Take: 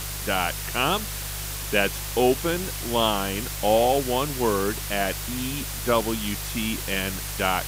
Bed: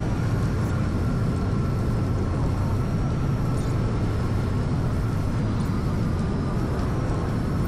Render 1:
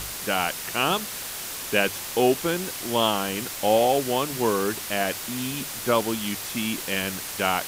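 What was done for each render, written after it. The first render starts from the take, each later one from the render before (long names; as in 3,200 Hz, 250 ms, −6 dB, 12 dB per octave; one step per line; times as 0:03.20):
hum removal 50 Hz, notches 3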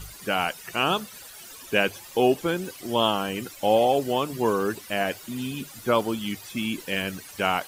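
broadband denoise 15 dB, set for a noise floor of −34 dBFS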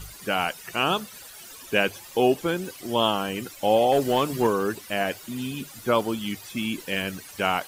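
0:03.92–0:04.47: leveller curve on the samples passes 1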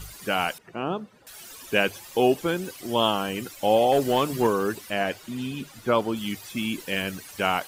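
0:00.58–0:01.27: resonant band-pass 270 Hz, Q 0.57
0:04.89–0:06.15: high-shelf EQ 9,500 Hz → 5,500 Hz −10 dB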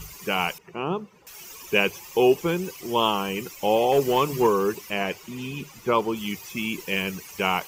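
EQ curve with evenly spaced ripples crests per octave 0.77, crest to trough 8 dB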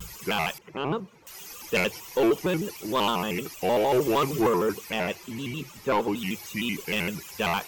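soft clipping −16.5 dBFS, distortion −13 dB
pitch modulation by a square or saw wave square 6.5 Hz, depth 160 cents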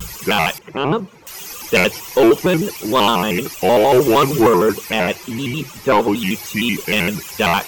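level +10.5 dB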